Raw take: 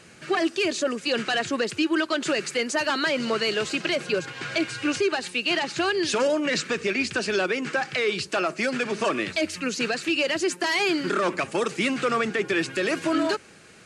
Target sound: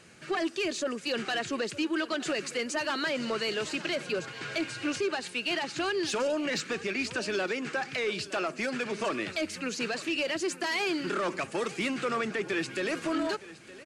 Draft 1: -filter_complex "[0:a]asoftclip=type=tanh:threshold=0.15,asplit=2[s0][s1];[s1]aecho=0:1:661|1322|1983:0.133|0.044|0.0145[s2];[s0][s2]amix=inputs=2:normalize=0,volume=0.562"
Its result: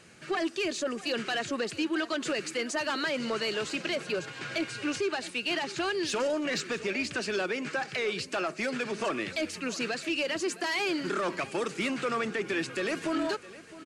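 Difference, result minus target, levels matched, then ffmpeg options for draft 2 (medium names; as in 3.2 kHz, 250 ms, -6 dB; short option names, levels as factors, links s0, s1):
echo 254 ms early
-filter_complex "[0:a]asoftclip=type=tanh:threshold=0.15,asplit=2[s0][s1];[s1]aecho=0:1:915|1830|2745:0.133|0.044|0.0145[s2];[s0][s2]amix=inputs=2:normalize=0,volume=0.562"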